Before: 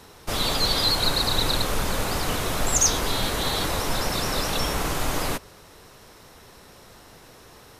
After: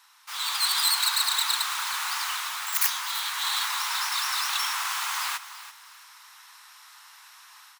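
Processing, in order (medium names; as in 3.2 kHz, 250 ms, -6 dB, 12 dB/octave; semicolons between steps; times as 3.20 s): tracing distortion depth 0.26 ms; steep high-pass 930 Hz 48 dB/octave; level rider gain up to 8 dB; feedback delay 334 ms, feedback 26%, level -14 dB; trim -6.5 dB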